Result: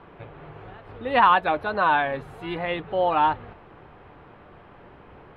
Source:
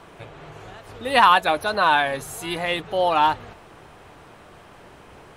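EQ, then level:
high-frequency loss of the air 440 metres
notch filter 650 Hz, Q 19
0.0 dB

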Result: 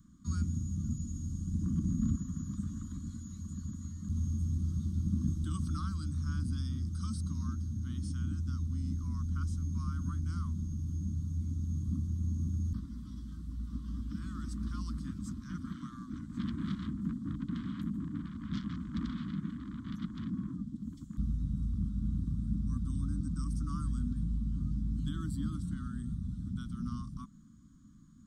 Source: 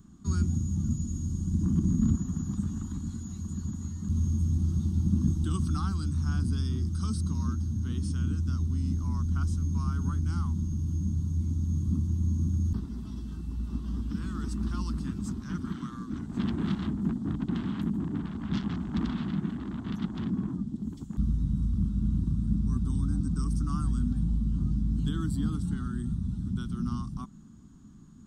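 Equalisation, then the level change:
Chebyshev band-stop filter 300–1,100 Hz, order 3
notch filter 2,700 Hz, Q 8
−5.5 dB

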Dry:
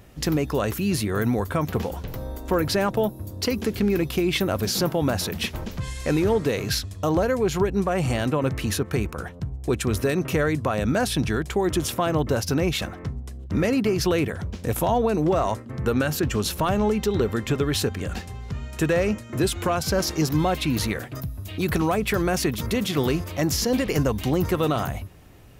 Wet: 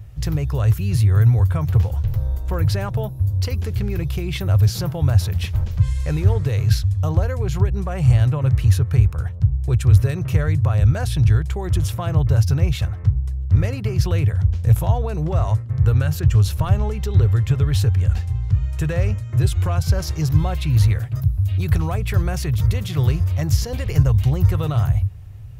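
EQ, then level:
low shelf with overshoot 160 Hz +14 dB, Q 3
−4.5 dB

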